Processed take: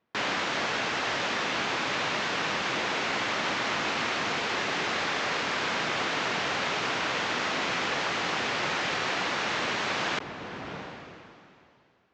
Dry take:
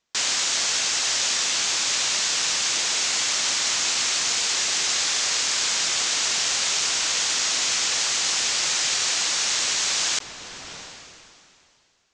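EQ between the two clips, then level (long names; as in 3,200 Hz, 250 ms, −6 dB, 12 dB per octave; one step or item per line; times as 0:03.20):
band-pass filter 140–2,300 Hz
spectral tilt −2.5 dB per octave
+4.5 dB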